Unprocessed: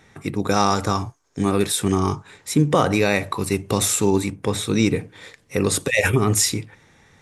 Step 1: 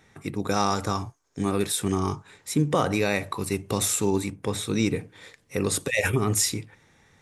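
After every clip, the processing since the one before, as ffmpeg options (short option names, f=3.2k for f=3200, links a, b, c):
-af "highshelf=f=10k:g=3.5,volume=-5.5dB"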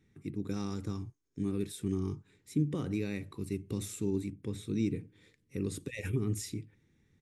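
-af "firequalizer=gain_entry='entry(340,0);entry(630,-20);entry(2200,-10);entry(5400,-12)':delay=0.05:min_phase=1,volume=-6.5dB"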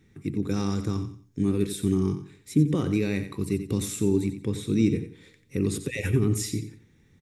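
-af "aecho=1:1:90|180|270:0.299|0.0836|0.0234,volume=9dB"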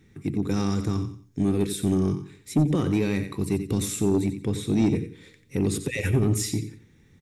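-af "asoftclip=type=tanh:threshold=-17dB,volume=3dB"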